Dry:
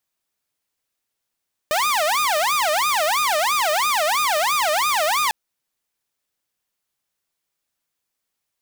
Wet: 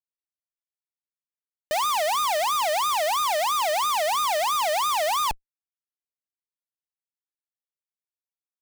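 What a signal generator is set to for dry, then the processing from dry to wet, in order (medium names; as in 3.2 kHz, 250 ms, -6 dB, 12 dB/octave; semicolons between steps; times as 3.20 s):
siren wail 599–1230 Hz 3 per s saw -15 dBFS 3.60 s
hum notches 50/100 Hz; Schmitt trigger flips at -37.5 dBFS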